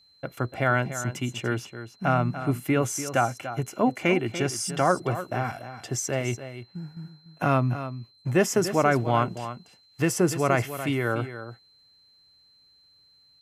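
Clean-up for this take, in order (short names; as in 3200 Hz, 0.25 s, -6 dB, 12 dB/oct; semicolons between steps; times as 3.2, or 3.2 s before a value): notch 4100 Hz, Q 30; inverse comb 0.291 s -11.5 dB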